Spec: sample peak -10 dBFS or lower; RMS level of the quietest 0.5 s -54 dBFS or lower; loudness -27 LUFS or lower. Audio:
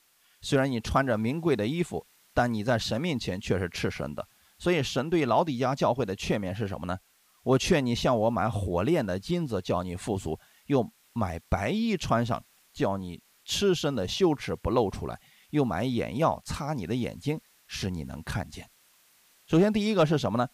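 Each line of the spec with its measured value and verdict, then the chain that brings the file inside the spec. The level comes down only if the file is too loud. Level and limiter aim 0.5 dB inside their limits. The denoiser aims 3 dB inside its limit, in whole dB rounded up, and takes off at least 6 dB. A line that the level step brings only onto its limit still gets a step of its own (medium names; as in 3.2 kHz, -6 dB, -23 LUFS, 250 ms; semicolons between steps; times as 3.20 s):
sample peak -12.5 dBFS: pass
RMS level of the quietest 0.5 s -62 dBFS: pass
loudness -28.5 LUFS: pass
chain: none needed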